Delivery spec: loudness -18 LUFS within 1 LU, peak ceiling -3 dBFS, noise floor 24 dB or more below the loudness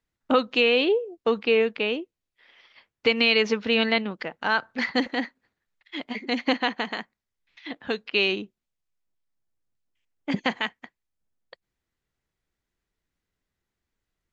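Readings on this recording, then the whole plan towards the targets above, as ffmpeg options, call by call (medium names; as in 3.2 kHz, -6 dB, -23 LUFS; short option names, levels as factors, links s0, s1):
loudness -24.5 LUFS; peak level -6.5 dBFS; loudness target -18.0 LUFS
-> -af "volume=2.11,alimiter=limit=0.708:level=0:latency=1"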